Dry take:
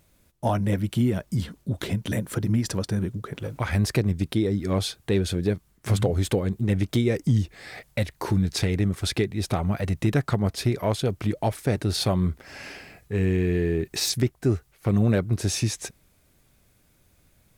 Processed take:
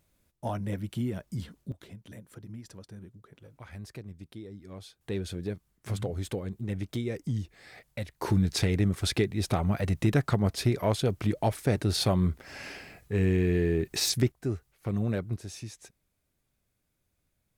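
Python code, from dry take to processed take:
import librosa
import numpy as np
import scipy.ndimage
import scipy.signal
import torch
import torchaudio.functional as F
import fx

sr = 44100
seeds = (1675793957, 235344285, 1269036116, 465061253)

y = fx.gain(x, sr, db=fx.steps((0.0, -9.0), (1.72, -20.0), (5.01, -10.0), (8.22, -2.0), (14.32, -8.5), (15.37, -16.0)))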